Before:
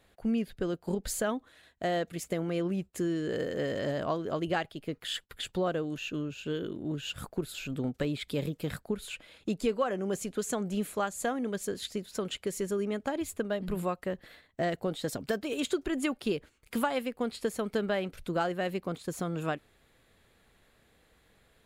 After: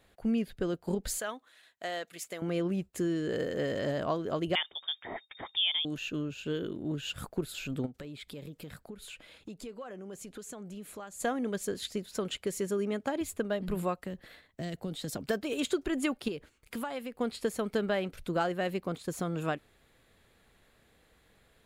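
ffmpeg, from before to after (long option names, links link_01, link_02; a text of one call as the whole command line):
ffmpeg -i in.wav -filter_complex "[0:a]asettb=1/sr,asplit=3[link_01][link_02][link_03];[link_01]atrim=end=1.184[link_04];[link_02]atrim=start=1.18:end=2.42,asetpts=PTS-STARTPTS,afade=type=in:duration=0.004:curve=qsin,afade=type=out:start_time=1.236:duration=0.004:curve=qsin,highpass=frequency=1200:poles=1[link_05];[link_03]atrim=start=2.416[link_06];[link_04][link_05]acrossfade=duration=0.004:curve1=hsin:curve2=qsin[link_07];[link_07][link_06]acrossfade=duration=0.004:curve1=qsin:curve2=hsin,asettb=1/sr,asplit=3[link_08][link_09][link_10];[link_08]atrim=end=4.554[link_11];[link_09]atrim=start=4.55:end=5.85,asetpts=PTS-STARTPTS,afade=type=in:duration=0.004:curve=qsin,afade=type=out:start_time=1.296:duration=0.004:curve=qsin,lowpass=frequency=3100:width_type=q:width=0.5098,lowpass=frequency=3100:width_type=q:width=0.6013,lowpass=frequency=3100:width_type=q:width=0.9,lowpass=frequency=3100:width_type=q:width=2.563,afreqshift=-3700[link_12];[link_10]atrim=start=5.846[link_13];[link_11][link_12]acrossfade=duration=0.004:curve1=hsin:curve2=qsin[link_14];[link_14][link_13]acrossfade=duration=0.004:curve1=qsin:curve2=hsin,asplit=3[link_15][link_16][link_17];[link_15]afade=type=out:start_time=7.85:duration=0.02[link_18];[link_16]acompressor=threshold=-44dB:ratio=3:attack=3.2:release=140:knee=1:detection=peak,afade=type=in:start_time=7.85:duration=0.02,afade=type=out:start_time=11.19:duration=0.02[link_19];[link_17]afade=type=in:start_time=11.19:duration=0.02[link_20];[link_18][link_19][link_20]amix=inputs=3:normalize=0,asettb=1/sr,asplit=3[link_21][link_22][link_23];[link_21]atrim=end=12.594[link_24];[link_22]atrim=start=12.59:end=13.21,asetpts=PTS-STARTPTS,afade=type=in:duration=0.004:curve=qsin,afade=type=out:start_time=0.616:duration=0.004:curve=qsin,highpass=84[link_25];[link_23]atrim=start=13.206[link_26];[link_24][link_25]acrossfade=duration=0.004:curve1=hsin:curve2=qsin[link_27];[link_27][link_26]acrossfade=duration=0.004:curve1=qsin:curve2=hsin,asettb=1/sr,asplit=3[link_28][link_29][link_30];[link_28]atrim=end=13.974[link_31];[link_29]atrim=start=13.97:end=15.16,asetpts=PTS-STARTPTS,afade=type=in:duration=0.004:curve=qsin,afade=type=out:start_time=1.186:duration=0.004:curve=qsin,acrossover=split=270|3000[link_32][link_33][link_34];[link_33]acompressor=threshold=-42dB:ratio=6:attack=3.2:release=140:knee=2.83:detection=peak[link_35];[link_32][link_35][link_34]amix=inputs=3:normalize=0[link_36];[link_30]atrim=start=15.156[link_37];[link_31][link_36]acrossfade=duration=0.004:curve1=hsin:curve2=qsin[link_38];[link_38][link_37]acrossfade=duration=0.004:curve1=qsin:curve2=hsin,asettb=1/sr,asplit=3[link_39][link_40][link_41];[link_39]atrim=end=16.284[link_42];[link_40]atrim=start=16.28:end=17.18,asetpts=PTS-STARTPTS,afade=type=in:duration=0.004:curve=qsin,afade=type=out:start_time=0.896:duration=0.004:curve=qsin,acompressor=threshold=-38dB:ratio=2:attack=3.2:release=140:knee=1:detection=peak[link_43];[link_41]atrim=start=17.176[link_44];[link_42][link_43]acrossfade=duration=0.004:curve1=hsin:curve2=qsin[link_45];[link_45][link_44]acrossfade=duration=0.004:curve1=qsin:curve2=hsin" out.wav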